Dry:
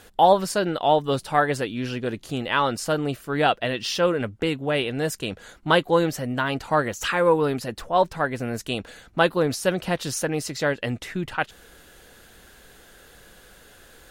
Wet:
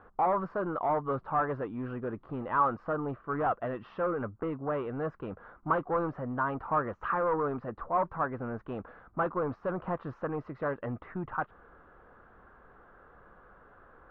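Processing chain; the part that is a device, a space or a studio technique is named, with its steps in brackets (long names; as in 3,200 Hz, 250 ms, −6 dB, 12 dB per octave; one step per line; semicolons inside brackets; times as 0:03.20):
overdriven synthesiser ladder filter (soft clipping −21 dBFS, distortion −8 dB; transistor ladder low-pass 1,300 Hz, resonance 65%)
level +4.5 dB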